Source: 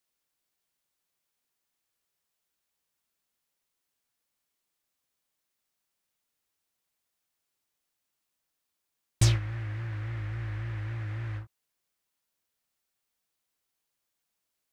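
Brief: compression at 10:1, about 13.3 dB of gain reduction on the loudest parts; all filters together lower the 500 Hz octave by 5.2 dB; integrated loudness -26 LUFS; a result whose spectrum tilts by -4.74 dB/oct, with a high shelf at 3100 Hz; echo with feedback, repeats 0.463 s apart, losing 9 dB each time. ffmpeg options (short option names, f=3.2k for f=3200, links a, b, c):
-af "equalizer=f=500:t=o:g=-8.5,highshelf=f=3.1k:g=5,acompressor=threshold=-30dB:ratio=10,aecho=1:1:463|926|1389|1852:0.355|0.124|0.0435|0.0152,volume=11dB"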